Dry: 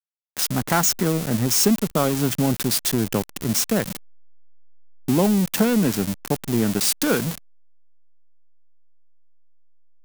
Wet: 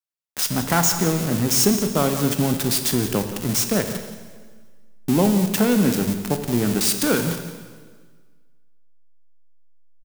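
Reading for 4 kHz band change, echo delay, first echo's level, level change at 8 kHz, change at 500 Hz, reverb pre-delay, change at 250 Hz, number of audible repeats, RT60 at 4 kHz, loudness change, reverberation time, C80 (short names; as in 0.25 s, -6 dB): +1.0 dB, 0.174 s, -14.0 dB, +1.0 dB, +1.0 dB, 5 ms, +1.0 dB, 1, 1.5 s, +1.0 dB, 1.6 s, 8.5 dB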